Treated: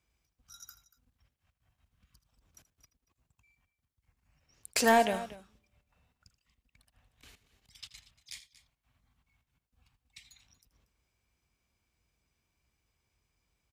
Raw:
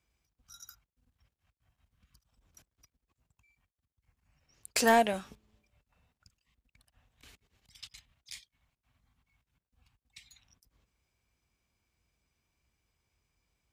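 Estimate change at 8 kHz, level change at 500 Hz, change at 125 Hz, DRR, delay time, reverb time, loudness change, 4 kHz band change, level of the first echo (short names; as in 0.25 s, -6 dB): 0.0 dB, 0.0 dB, n/a, none, 80 ms, none, -0.5 dB, 0.0 dB, -15.5 dB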